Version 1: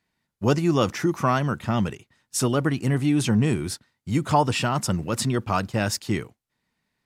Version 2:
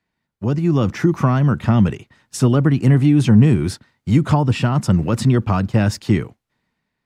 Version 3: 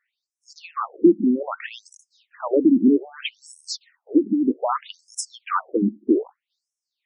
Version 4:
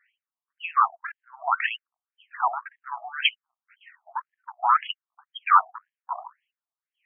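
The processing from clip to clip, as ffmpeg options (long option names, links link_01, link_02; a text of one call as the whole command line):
ffmpeg -i in.wav -filter_complex "[0:a]acrossover=split=260[link_01][link_02];[link_02]acompressor=threshold=-34dB:ratio=3[link_03];[link_01][link_03]amix=inputs=2:normalize=0,highshelf=frequency=4900:gain=-10.5,dynaudnorm=framelen=120:gausssize=11:maxgain=11dB,volume=1dB" out.wav
ffmpeg -i in.wav -af "afftfilt=real='re*between(b*sr/1024,250*pow(7500/250,0.5+0.5*sin(2*PI*0.63*pts/sr))/1.41,250*pow(7500/250,0.5+0.5*sin(2*PI*0.63*pts/sr))*1.41)':imag='im*between(b*sr/1024,250*pow(7500/250,0.5+0.5*sin(2*PI*0.63*pts/sr))/1.41,250*pow(7500/250,0.5+0.5*sin(2*PI*0.63*pts/sr))*1.41)':win_size=1024:overlap=0.75,volume=5dB" out.wav
ffmpeg -i in.wav -af "bandreject=frequency=60:width_type=h:width=6,bandreject=frequency=120:width_type=h:width=6,bandreject=frequency=180:width_type=h:width=6,bandreject=frequency=240:width_type=h:width=6,bandreject=frequency=300:width_type=h:width=6,bandreject=frequency=360:width_type=h:width=6,bandreject=frequency=420:width_type=h:width=6,bandreject=frequency=480:width_type=h:width=6,bandreject=frequency=540:width_type=h:width=6,bandreject=frequency=600:width_type=h:width=6,aeval=exprs='(tanh(5.01*val(0)+0.2)-tanh(0.2))/5.01':channel_layout=same,afftfilt=real='re*between(b*sr/1024,890*pow(2400/890,0.5+0.5*sin(2*PI*1.9*pts/sr))/1.41,890*pow(2400/890,0.5+0.5*sin(2*PI*1.9*pts/sr))*1.41)':imag='im*between(b*sr/1024,890*pow(2400/890,0.5+0.5*sin(2*PI*1.9*pts/sr))/1.41,890*pow(2400/890,0.5+0.5*sin(2*PI*1.9*pts/sr))*1.41)':win_size=1024:overlap=0.75,volume=9dB" out.wav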